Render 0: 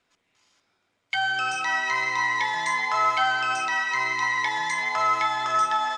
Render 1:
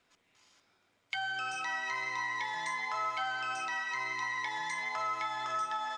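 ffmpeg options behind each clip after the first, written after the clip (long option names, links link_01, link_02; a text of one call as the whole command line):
ffmpeg -i in.wav -af "acompressor=threshold=-42dB:ratio=2" out.wav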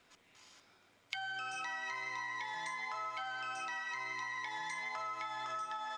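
ffmpeg -i in.wav -af "acompressor=threshold=-44dB:ratio=6,volume=5dB" out.wav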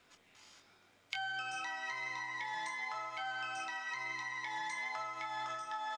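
ffmpeg -i in.wav -filter_complex "[0:a]asplit=2[link_01][link_02];[link_02]adelay=22,volume=-8dB[link_03];[link_01][link_03]amix=inputs=2:normalize=0" out.wav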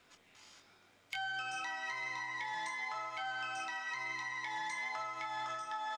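ffmpeg -i in.wav -af "asoftclip=type=tanh:threshold=-29.5dB,volume=1dB" out.wav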